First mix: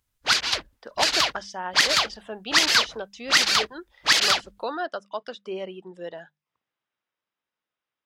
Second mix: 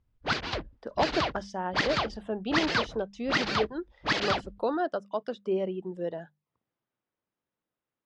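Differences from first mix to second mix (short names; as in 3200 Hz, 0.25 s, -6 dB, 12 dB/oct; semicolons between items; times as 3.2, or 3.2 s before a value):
background: add air absorption 170 m; master: add tilt shelf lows +8.5 dB, about 740 Hz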